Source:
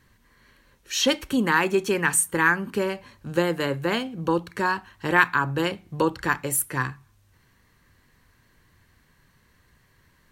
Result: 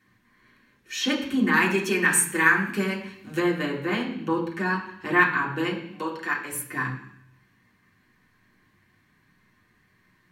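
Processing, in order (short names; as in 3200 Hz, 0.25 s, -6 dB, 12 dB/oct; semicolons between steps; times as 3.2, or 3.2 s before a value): 1.53–3.4 high shelf 2600 Hz +9 dB; 5.79–6.52 HPF 670 Hz 6 dB/oct; reverb RT60 0.70 s, pre-delay 3 ms, DRR -4 dB; gain -9 dB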